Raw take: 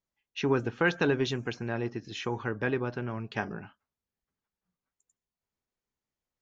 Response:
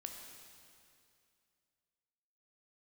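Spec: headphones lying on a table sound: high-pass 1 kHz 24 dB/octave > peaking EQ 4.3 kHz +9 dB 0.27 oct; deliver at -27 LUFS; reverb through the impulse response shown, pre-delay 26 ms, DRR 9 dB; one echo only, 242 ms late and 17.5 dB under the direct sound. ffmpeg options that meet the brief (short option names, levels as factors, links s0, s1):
-filter_complex "[0:a]aecho=1:1:242:0.133,asplit=2[s0][s1];[1:a]atrim=start_sample=2205,adelay=26[s2];[s1][s2]afir=irnorm=-1:irlink=0,volume=0.501[s3];[s0][s3]amix=inputs=2:normalize=0,highpass=f=1000:w=0.5412,highpass=f=1000:w=1.3066,equalizer=f=4300:t=o:w=0.27:g=9,volume=2.82"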